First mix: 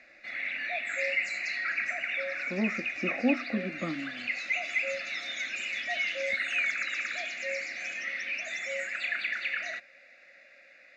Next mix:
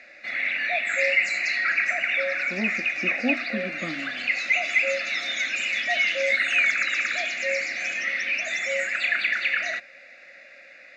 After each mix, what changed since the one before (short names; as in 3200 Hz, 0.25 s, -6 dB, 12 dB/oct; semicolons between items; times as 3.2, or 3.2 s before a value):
background +8.0 dB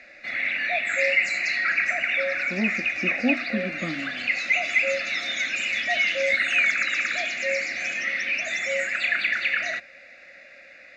master: add low shelf 170 Hz +9 dB